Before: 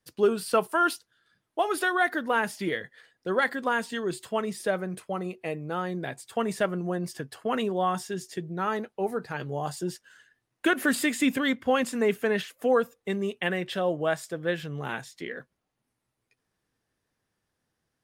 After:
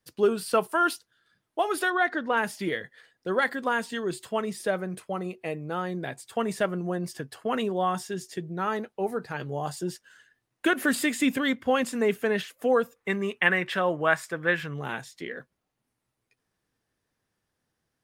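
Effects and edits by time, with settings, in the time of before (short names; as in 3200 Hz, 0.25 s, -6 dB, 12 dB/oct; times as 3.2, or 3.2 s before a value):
1.9–2.37 Bessel low-pass 5200 Hz, order 4
12.96–14.74 band shelf 1500 Hz +9 dB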